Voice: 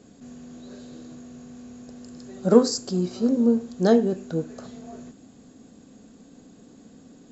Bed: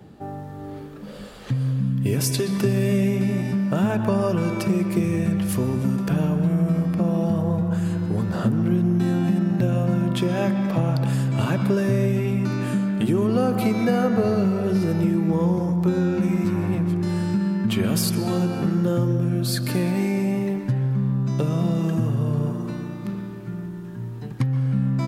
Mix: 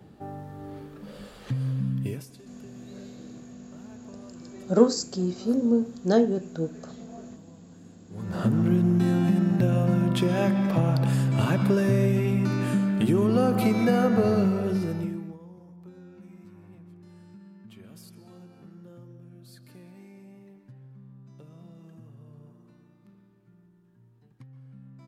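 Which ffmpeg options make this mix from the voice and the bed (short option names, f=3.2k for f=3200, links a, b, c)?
-filter_complex "[0:a]adelay=2250,volume=-2.5dB[a];[1:a]volume=21.5dB,afade=t=out:st=1.97:d=0.29:silence=0.0707946,afade=t=in:st=8.09:d=0.44:silence=0.0473151,afade=t=out:st=14.38:d=1:silence=0.0562341[b];[a][b]amix=inputs=2:normalize=0"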